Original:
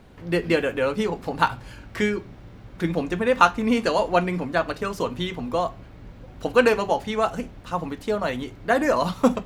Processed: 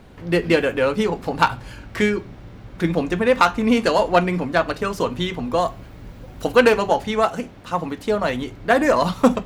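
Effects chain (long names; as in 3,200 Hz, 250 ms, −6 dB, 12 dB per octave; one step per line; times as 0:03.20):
phase distortion by the signal itself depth 0.082 ms
0:05.58–0:06.55: high-shelf EQ 7,700 Hz +11 dB
0:07.25–0:08.04: high-pass filter 200 Hz → 86 Hz 6 dB per octave
boost into a limiter +5 dB
level −1 dB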